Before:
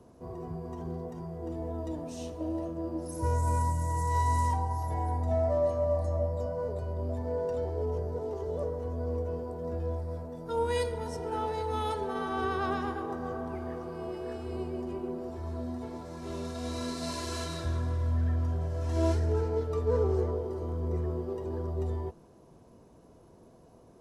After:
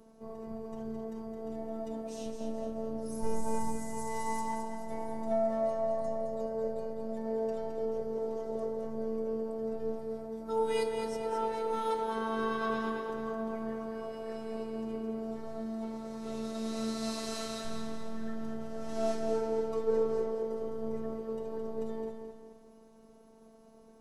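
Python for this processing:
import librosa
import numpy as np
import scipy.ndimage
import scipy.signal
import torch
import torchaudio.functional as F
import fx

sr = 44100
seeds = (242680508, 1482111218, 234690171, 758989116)

y = fx.high_shelf(x, sr, hz=4600.0, db=-10.5, at=(4.41, 4.89))
y = fx.echo_feedback(y, sr, ms=215, feedback_pct=41, wet_db=-6.5)
y = fx.robotise(y, sr, hz=223.0)
y = fx.low_shelf(y, sr, hz=140.0, db=7.0, at=(2.26, 3.77))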